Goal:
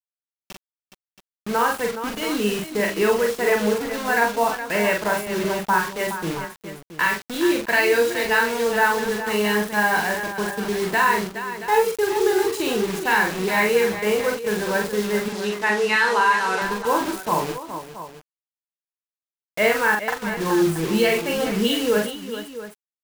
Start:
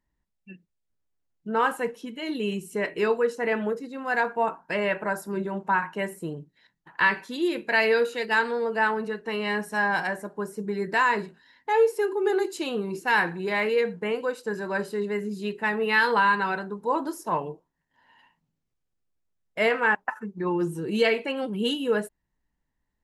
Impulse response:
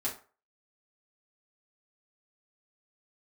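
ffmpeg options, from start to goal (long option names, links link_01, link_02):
-filter_complex "[0:a]alimiter=limit=-15dB:level=0:latency=1:release=409,acrusher=bits=5:mix=0:aa=0.000001,asettb=1/sr,asplit=3[link_01][link_02][link_03];[link_01]atrim=end=15.284[link_04];[link_02]atrim=start=15.28:end=16.62,asetpts=PTS-STARTPTS,afade=type=in:duration=0.004:curve=qsin,afade=type=out:start_time=1.336:duration=0.004:curve=qsin,highpass=290,lowpass=7800[link_05];[link_03]atrim=start=16.616[link_06];[link_04][link_05]acrossfade=duration=0.004:curve1=hsin:curve2=qsin[link_07];[link_07][link_06]acrossfade=duration=0.004:curve1=qsin:curve2=hsin,aecho=1:1:43|418|676:0.708|0.316|0.224,volume=4dB"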